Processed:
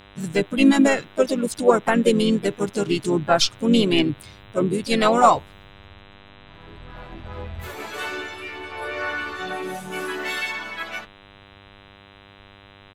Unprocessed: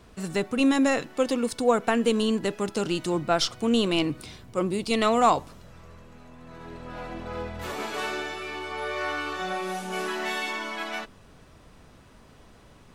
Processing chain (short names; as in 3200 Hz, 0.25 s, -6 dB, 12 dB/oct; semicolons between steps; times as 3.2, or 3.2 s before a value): per-bin expansion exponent 1.5; harmoniser -5 st -16 dB, -4 st -11 dB, +3 st -11 dB; buzz 100 Hz, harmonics 40, -55 dBFS -2 dB/oct; gain +6.5 dB